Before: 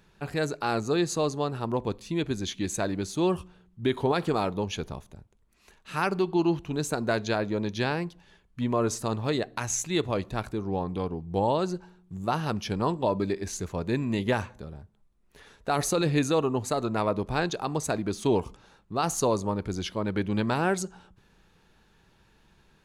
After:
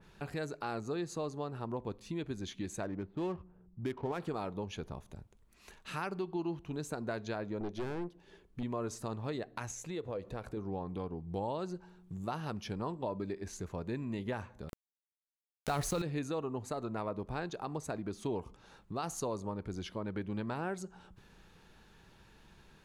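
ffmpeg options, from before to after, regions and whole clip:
ffmpeg -i in.wav -filter_complex "[0:a]asettb=1/sr,asplit=3[link_01][link_02][link_03];[link_01]atrim=end=2.834[link_04];[link_02]atrim=start=2.83:end=4.2,asetpts=PTS-STARTPTS,afade=type=in:duration=0.004:curve=qsin,afade=type=out:start_time=1.366:duration=0.004:curve=qsin,lowpass=frequency=3100:width=0.5412,lowpass=frequency=3100:width=1.3066,adynamicsmooth=sensitivity=8:basefreq=760[link_05];[link_03]atrim=start=4.196[link_06];[link_04][link_05]acrossfade=duration=0.004:curve1=hsin:curve2=qsin[link_07];[link_07][link_06]acrossfade=duration=0.004:curve1=qsin:curve2=hsin,asettb=1/sr,asplit=3[link_08][link_09][link_10];[link_08]atrim=end=7.604[link_11];[link_09]atrim=start=7.6:end=8.63,asetpts=PTS-STARTPTS,afade=type=in:duration=0.004:curve=qsin,afade=type=out:start_time=1.026:duration=0.004:curve=qsin,equalizer=frequency=370:width_type=o:width=0.96:gain=12.5,aeval=exprs='(tanh(15.8*val(0)+0.6)-tanh(0.6))/15.8':channel_layout=same[link_12];[link_10]atrim=start=8.626[link_13];[link_11][link_12]acrossfade=duration=0.004:curve1=hsin:curve2=qsin[link_14];[link_14][link_13]acrossfade=duration=0.004:curve1=qsin:curve2=hsin,asettb=1/sr,asplit=3[link_15][link_16][link_17];[link_15]atrim=end=9.714[link_18];[link_16]atrim=start=9.71:end=10.57,asetpts=PTS-STARTPTS,afade=type=in:duration=0.004:curve=qsin,afade=type=out:start_time=0.856:duration=0.004:curve=qsin,equalizer=frequency=490:width=4.3:gain=12,acompressor=threshold=-32dB:ratio=2:attack=3.2:release=140:knee=1:detection=peak[link_19];[link_17]atrim=start=10.566[link_20];[link_18][link_19]acrossfade=duration=0.004:curve1=hsin:curve2=qsin[link_21];[link_21][link_20]acrossfade=duration=0.004:curve1=qsin:curve2=hsin,asettb=1/sr,asplit=3[link_22][link_23][link_24];[link_22]atrim=end=14.694[link_25];[link_23]atrim=start=14.69:end=16.02,asetpts=PTS-STARTPTS,afade=type=in:duration=0.004:curve=qsin,afade=type=out:start_time=1.326:duration=0.004:curve=qsin,asubboost=boost=9:cutoff=130,acontrast=86,aeval=exprs='val(0)*gte(abs(val(0)),0.0422)':channel_layout=same[link_26];[link_24]atrim=start=16.016[link_27];[link_25][link_26]acrossfade=duration=0.004:curve1=hsin:curve2=qsin[link_28];[link_28][link_27]acrossfade=duration=0.004:curve1=qsin:curve2=hsin,acompressor=threshold=-46dB:ratio=2,adynamicequalizer=threshold=0.00126:dfrequency=2400:dqfactor=0.7:tfrequency=2400:tqfactor=0.7:attack=5:release=100:ratio=0.375:range=3:mode=cutabove:tftype=highshelf,volume=1.5dB" out.wav

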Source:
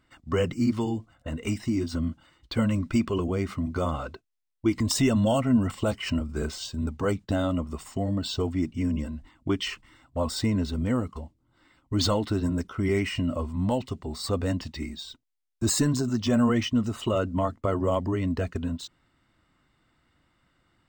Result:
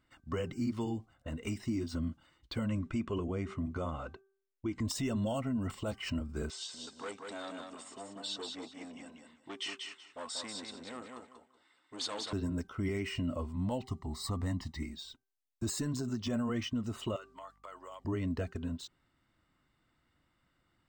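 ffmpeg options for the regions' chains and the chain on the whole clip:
ffmpeg -i in.wav -filter_complex "[0:a]asettb=1/sr,asplit=3[link_01][link_02][link_03];[link_01]atrim=end=2.664[link_04];[link_02]atrim=start=2.66:end=4.88,asetpts=PTS-STARTPTS,afade=type=in:duration=0.004:curve=qsin,afade=type=out:start_time=2.216:duration=0.004:curve=qsin,lowpass=frequency=7800:width=0.5412,lowpass=frequency=7800:width=1.3066,equalizer=frequency=4700:width_type=o:width=0.65:gain=-8[link_05];[link_03]atrim=start=4.876[link_06];[link_04][link_05]acrossfade=duration=0.004:curve1=hsin:curve2=qsin[link_07];[link_07][link_06]acrossfade=duration=0.004:curve1=qsin:curve2=hsin,asettb=1/sr,asplit=3[link_08][link_09][link_10];[link_08]atrim=end=6.504[link_11];[link_09]atrim=start=6.5:end=12.33,asetpts=PTS-STARTPTS,afade=type=in:duration=0.004:curve=qsin,afade=type=out:start_time=5.826:duration=0.004:curve=qsin,aeval=exprs='(tanh(15.8*val(0)+0.25)-tanh(0.25))/15.8':channel_layout=same,highpass=480,equalizer=frequency=580:width_type=q:width=4:gain=-5,equalizer=frequency=3600:width_type=q:width=4:gain=4,equalizer=frequency=8400:width_type=q:width=4:gain=7,lowpass=frequency=8500:width=0.5412,lowpass=frequency=8500:width=1.3066,aecho=1:1:188|376|564:0.596|0.137|0.0315,atrim=end_sample=257103[link_12];[link_10]atrim=start=12.326[link_13];[link_11][link_12]acrossfade=duration=0.004:curve1=hsin:curve2=qsin[link_14];[link_14][link_13]acrossfade=duration=0.004:curve1=qsin:curve2=hsin,asettb=1/sr,asplit=3[link_15][link_16][link_17];[link_15]atrim=end=13.834[link_18];[link_16]atrim=start=13.83:end=14.83,asetpts=PTS-STARTPTS,afade=type=in:duration=0.004:curve=qsin,afade=type=out:start_time=0.996:duration=0.004:curve=qsin,equalizer=frequency=2800:width_type=o:width=0.35:gain=-7.5,aecho=1:1:1:0.66,atrim=end_sample=44100[link_19];[link_17]atrim=start=14.826[link_20];[link_18][link_19]acrossfade=duration=0.004:curve1=hsin:curve2=qsin[link_21];[link_21][link_20]acrossfade=duration=0.004:curve1=qsin:curve2=hsin,asettb=1/sr,asplit=3[link_22][link_23][link_24];[link_22]atrim=end=17.164[link_25];[link_23]atrim=start=17.16:end=18.05,asetpts=PTS-STARTPTS,afade=type=in:duration=0.004:curve=qsin,afade=type=out:start_time=0.886:duration=0.004:curve=qsin,highpass=1100,acompressor=threshold=-37dB:ratio=4:attack=3.2:release=140:knee=1:detection=peak,aeval=exprs='val(0)+0.000794*(sin(2*PI*50*n/s)+sin(2*PI*2*50*n/s)/2+sin(2*PI*3*50*n/s)/3+sin(2*PI*4*50*n/s)/4+sin(2*PI*5*50*n/s)/5)':channel_layout=same[link_26];[link_24]atrim=start=18.046[link_27];[link_25][link_26]acrossfade=duration=0.004:curve1=hsin:curve2=qsin[link_28];[link_28][link_27]acrossfade=duration=0.004:curve1=qsin:curve2=hsin,bandreject=frequency=389.4:width_type=h:width=4,bandreject=frequency=778.8:width_type=h:width=4,bandreject=frequency=1168.2:width_type=h:width=4,bandreject=frequency=1557.6:width_type=h:width=4,alimiter=limit=-19dB:level=0:latency=1:release=153,volume=-7dB" out.wav

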